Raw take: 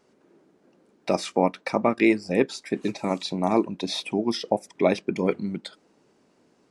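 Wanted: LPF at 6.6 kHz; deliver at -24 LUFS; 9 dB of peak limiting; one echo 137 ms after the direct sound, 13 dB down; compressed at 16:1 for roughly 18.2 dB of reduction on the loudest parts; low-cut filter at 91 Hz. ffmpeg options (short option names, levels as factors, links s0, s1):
-af "highpass=91,lowpass=6600,acompressor=threshold=0.0224:ratio=16,alimiter=level_in=1.58:limit=0.0631:level=0:latency=1,volume=0.631,aecho=1:1:137:0.224,volume=7.5"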